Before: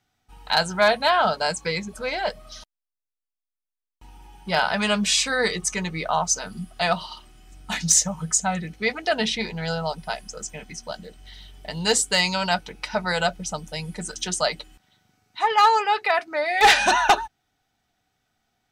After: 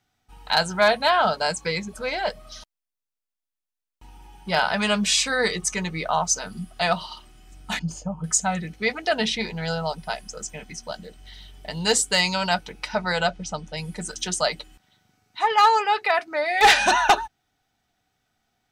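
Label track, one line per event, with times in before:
7.790000	8.240000	moving average over 23 samples
12.920000	13.760000	low-pass filter 8,400 Hz → 4,600 Hz

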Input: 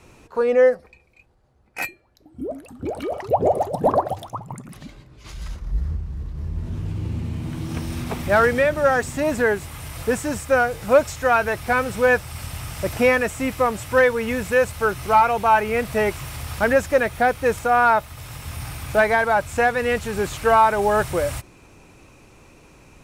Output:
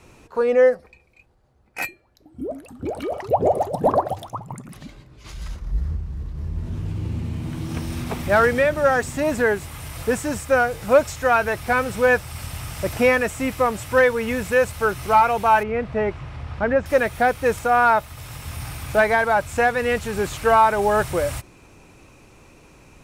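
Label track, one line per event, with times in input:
15.630000	16.860000	head-to-tape spacing loss at 10 kHz 31 dB

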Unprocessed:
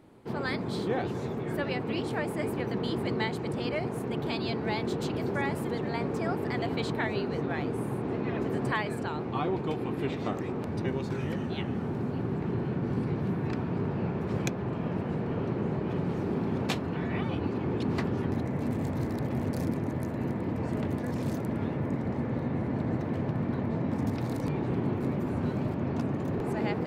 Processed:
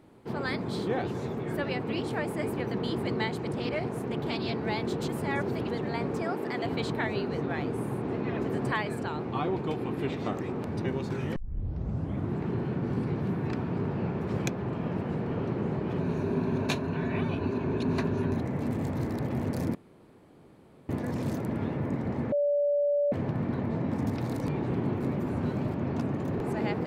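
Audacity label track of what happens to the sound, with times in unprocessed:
3.460000	4.560000	highs frequency-modulated by the lows depth 0.14 ms
5.080000	5.690000	reverse
6.220000	6.640000	high-pass filter 210 Hz
11.360000	11.360000	tape start 1.02 s
16.000000	18.370000	EQ curve with evenly spaced ripples crests per octave 1.5, crest to trough 8 dB
19.750000	20.890000	fill with room tone
22.320000	23.120000	beep over 578 Hz −22.5 dBFS

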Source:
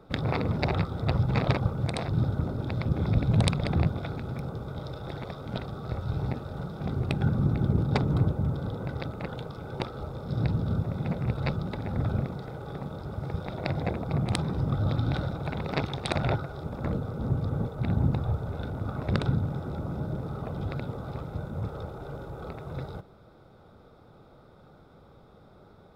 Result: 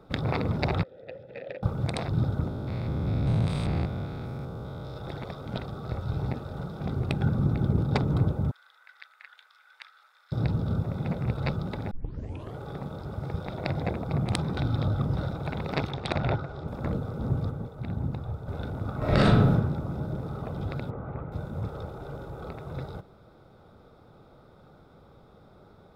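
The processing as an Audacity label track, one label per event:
0.830000	1.630000	formant filter e
2.480000	4.970000	spectrum averaged block by block every 200 ms
8.510000	10.320000	four-pole ladder high-pass 1,500 Hz, resonance 55%
11.910000	11.910000	tape start 0.67 s
14.570000	15.170000	reverse
15.910000	16.680000	high-frequency loss of the air 76 metres
17.510000	18.480000	clip gain −6 dB
18.980000	19.510000	thrown reverb, RT60 0.86 s, DRR −9 dB
20.900000	21.320000	low-pass filter 2,200 Hz 24 dB per octave

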